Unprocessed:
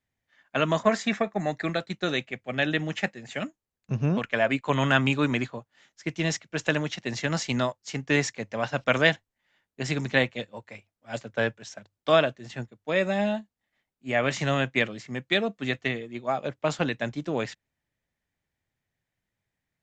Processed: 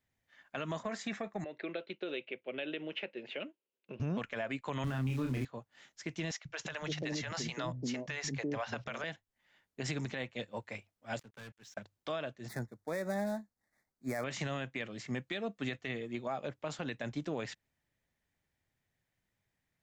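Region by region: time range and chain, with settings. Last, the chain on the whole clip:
1.44–4.00 s: compression 3:1, threshold -35 dBFS + cabinet simulation 370–3300 Hz, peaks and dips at 370 Hz +7 dB, 530 Hz +4 dB, 760 Hz -10 dB, 1.2 kHz -8 dB, 1.8 kHz -10 dB, 2.8 kHz +5 dB
4.84–5.45 s: zero-crossing glitches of -18 dBFS + RIAA curve playback + doubling 31 ms -4.5 dB
6.31–9.04 s: steep low-pass 7.1 kHz + compression 1.5:1, threshold -30 dBFS + three bands offset in time highs, lows, mids 140/340 ms, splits 160/490 Hz
11.19–11.77 s: peaking EQ 620 Hz -12 dB 0.66 oct + waveshaping leveller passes 5 + inverted gate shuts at -31 dBFS, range -30 dB
12.48–14.24 s: dead-time distortion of 0.064 ms + Butterworth band-stop 2.9 kHz, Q 1.5
whole clip: compression 5:1, threshold -32 dBFS; peak limiter -27 dBFS

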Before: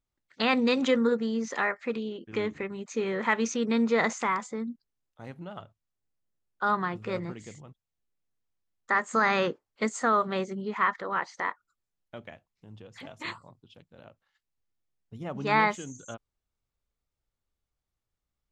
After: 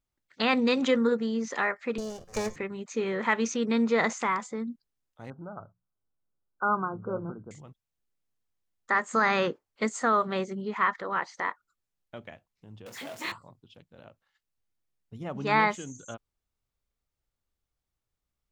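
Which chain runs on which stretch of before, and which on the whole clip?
1.98–2.56 s: comb filter that takes the minimum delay 1.7 ms + resonant high shelf 4.5 kHz +11.5 dB, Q 3 + de-hum 176.3 Hz, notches 31
5.30–7.51 s: brick-wall FIR low-pass 1.6 kHz + hum notches 60/120/180 Hz
12.86–13.32 s: jump at every zero crossing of -40.5 dBFS + high-pass 220 Hz + doubling 25 ms -8 dB
whole clip: none

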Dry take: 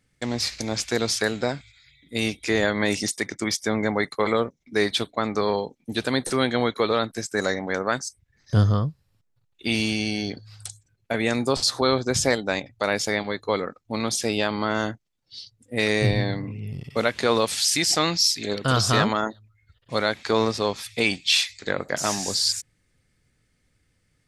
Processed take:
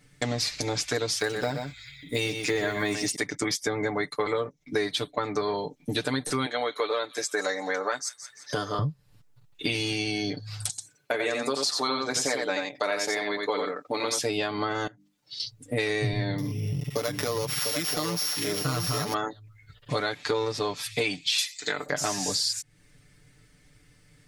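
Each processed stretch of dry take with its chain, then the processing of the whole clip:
1.17–3.16 s: block-companded coder 7-bit + delay 124 ms -9 dB
6.46–8.79 s: high-pass 420 Hz + feedback echo behind a high-pass 172 ms, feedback 38%, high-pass 2.7 kHz, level -17.5 dB
10.69–14.21 s: high-pass 300 Hz + delay 88 ms -4.5 dB
14.87–15.40 s: high-pass 220 Hz 6 dB/octave + hum notches 50/100/150/200/250/300 Hz + compression 10:1, threshold -45 dBFS
16.38–19.14 s: sorted samples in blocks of 8 samples + compression 3:1, threshold -25 dBFS + delay 697 ms -5.5 dB
21.38–21.86 s: RIAA curve recording + band-stop 4.5 kHz, Q 19 + comb of notches 550 Hz
whole clip: comb 6.8 ms, depth 86%; compression 4:1, threshold -35 dBFS; trim +7.5 dB

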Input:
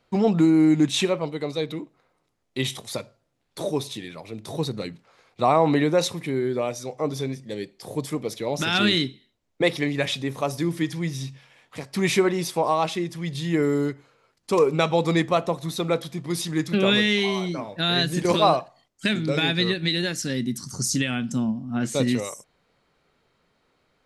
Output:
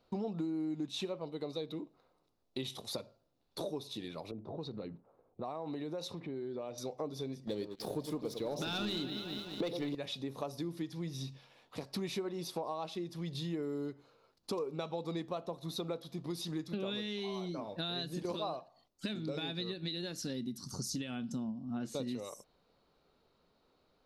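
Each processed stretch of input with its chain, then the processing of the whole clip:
4.31–6.78 s: level-controlled noise filter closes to 490 Hz, open at -18 dBFS + compression 2.5:1, threshold -36 dBFS
7.47–9.95 s: echo whose repeats swap between lows and highs 104 ms, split 940 Hz, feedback 70%, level -9.5 dB + waveshaping leveller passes 2
whole clip: graphic EQ 125/2000/4000/8000 Hz -5/-11/+4/-10 dB; compression 5:1, threshold -34 dBFS; band-stop 3.2 kHz, Q 17; trim -2.5 dB

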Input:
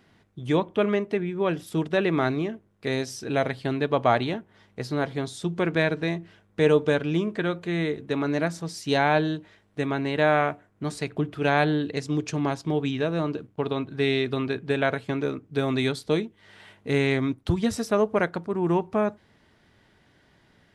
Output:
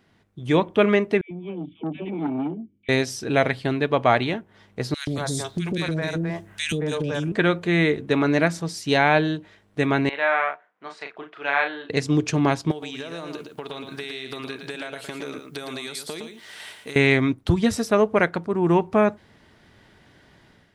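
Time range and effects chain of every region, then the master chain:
1.21–2.89 s: cascade formant filter i + phase dispersion lows, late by 102 ms, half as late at 590 Hz + transformer saturation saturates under 530 Hz
4.94–7.32 s: tone controls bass +5 dB, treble +12 dB + three bands offset in time highs, lows, mids 130/220 ms, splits 470/2000 Hz + compression, threshold -29 dBFS
10.09–11.90 s: high-pass 1 kHz + tape spacing loss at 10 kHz 31 dB + doubling 36 ms -5 dB
12.71–16.96 s: RIAA curve recording + compression 16:1, threshold -35 dBFS + delay 113 ms -6.5 dB
whole clip: dynamic bell 2.2 kHz, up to +5 dB, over -39 dBFS, Q 1.6; level rider gain up to 8.5 dB; trim -2 dB

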